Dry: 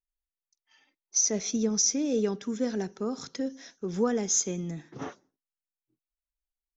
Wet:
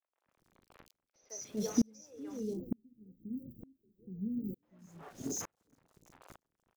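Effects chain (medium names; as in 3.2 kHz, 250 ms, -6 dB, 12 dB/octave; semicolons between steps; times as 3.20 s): chunks repeated in reverse 478 ms, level -12 dB; recorder AGC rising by 5.5 dB/s; frequency-shifting echo 354 ms, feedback 57%, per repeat +65 Hz, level -13.5 dB; reverb removal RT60 1.9 s; band noise 93–610 Hz -50 dBFS; tilt shelf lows +3.5 dB, about 1.3 kHz; small samples zeroed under -39.5 dBFS; 2.39–4.63 s: inverse Chebyshev band-stop 1.1–7.1 kHz, stop band 70 dB; doubling 37 ms -12 dB; three bands offset in time mids, highs, lows 160/240 ms, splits 450/3500 Hz; sawtooth tremolo in dB swelling 1.1 Hz, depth 38 dB; trim +2 dB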